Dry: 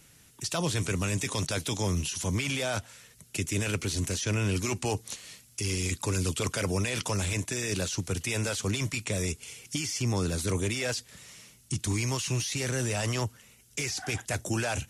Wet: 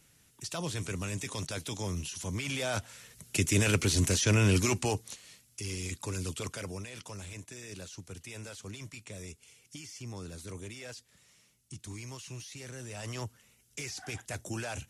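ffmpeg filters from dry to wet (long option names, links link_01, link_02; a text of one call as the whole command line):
ffmpeg -i in.wav -af "volume=10dB,afade=type=in:start_time=2.34:duration=1.14:silence=0.316228,afade=type=out:start_time=4.57:duration=0.59:silence=0.298538,afade=type=out:start_time=6.38:duration=0.5:silence=0.446684,afade=type=in:start_time=12.86:duration=0.4:silence=0.473151" out.wav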